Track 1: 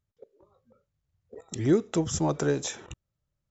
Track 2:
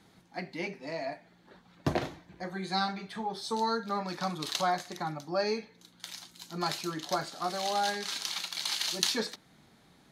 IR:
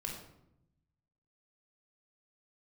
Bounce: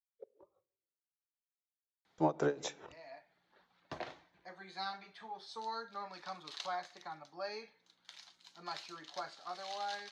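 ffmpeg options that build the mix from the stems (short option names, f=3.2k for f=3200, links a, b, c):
-filter_complex "[0:a]agate=range=-33dB:threshold=-59dB:ratio=3:detection=peak,equalizer=f=290:w=0.31:g=10.5,aeval=exprs='val(0)*pow(10,-18*(0.5-0.5*cos(2*PI*4.9*n/s))/20)':c=same,volume=-5dB,asplit=3[a][b][c];[a]atrim=end=0.67,asetpts=PTS-STARTPTS,afade=t=out:st=0.666:d=0.004:c=hsin[d];[b]atrim=start=0.67:end=2.18,asetpts=PTS-STARTPTS,volume=0[e];[c]atrim=start=2.18,asetpts=PTS-STARTPTS,afade=t=in:d=0.004:c=hsin[f];[d][e][f]concat=n=3:v=0:a=1,asplit=3[g][h][i];[h]volume=-20dB[j];[1:a]adelay=2050,volume=-9.5dB[k];[i]apad=whole_len=536576[l];[k][l]sidechaincompress=threshold=-35dB:ratio=8:attack=22:release=887[m];[2:a]atrim=start_sample=2205[n];[j][n]afir=irnorm=-1:irlink=0[o];[g][m][o]amix=inputs=3:normalize=0,acrossover=split=490 6300:gain=0.224 1 0.0794[p][q][r];[p][q][r]amix=inputs=3:normalize=0"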